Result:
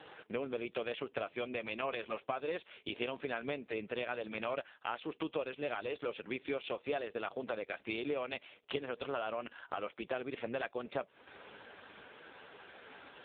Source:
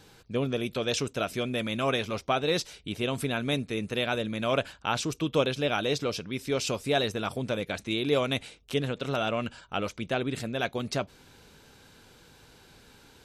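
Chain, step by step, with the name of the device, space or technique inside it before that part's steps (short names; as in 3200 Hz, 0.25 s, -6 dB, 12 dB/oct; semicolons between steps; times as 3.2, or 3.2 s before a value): voicemail (BPF 410–3200 Hz; compressor 8:1, threshold -44 dBFS, peak gain reduction 21.5 dB; gain +10.5 dB; AMR-NB 4.75 kbps 8000 Hz)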